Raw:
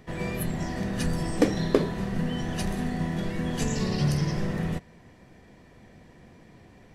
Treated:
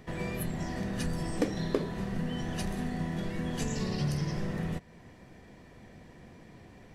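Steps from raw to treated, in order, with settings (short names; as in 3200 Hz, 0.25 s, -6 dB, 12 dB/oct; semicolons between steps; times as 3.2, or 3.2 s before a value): compressor 1.5:1, threshold -38 dBFS, peak gain reduction 8.5 dB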